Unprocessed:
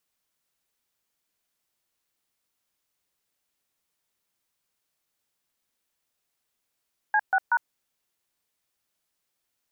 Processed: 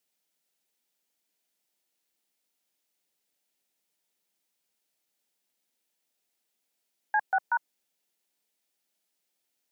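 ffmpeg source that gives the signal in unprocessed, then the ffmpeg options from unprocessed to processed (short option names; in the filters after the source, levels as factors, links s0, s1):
-f lavfi -i "aevalsrc='0.0891*clip(min(mod(t,0.188),0.055-mod(t,0.188))/0.002,0,1)*(eq(floor(t/0.188),0)*(sin(2*PI*852*mod(t,0.188))+sin(2*PI*1633*mod(t,0.188)))+eq(floor(t/0.188),1)*(sin(2*PI*770*mod(t,0.188))+sin(2*PI*1477*mod(t,0.188)))+eq(floor(t/0.188),2)*(sin(2*PI*941*mod(t,0.188))+sin(2*PI*1477*mod(t,0.188))))':d=0.564:s=44100"
-af "highpass=f=170:w=0.5412,highpass=f=170:w=1.3066,equalizer=f=1400:t=o:w=0.86:g=-4.5,bandreject=f=1100:w=7"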